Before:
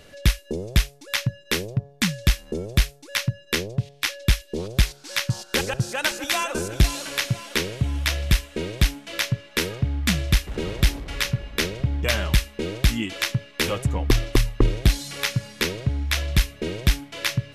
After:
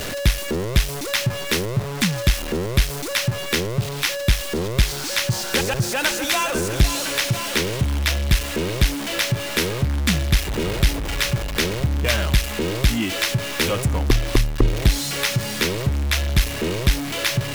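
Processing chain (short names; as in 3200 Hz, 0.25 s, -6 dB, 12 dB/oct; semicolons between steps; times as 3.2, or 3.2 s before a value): zero-crossing step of -23 dBFS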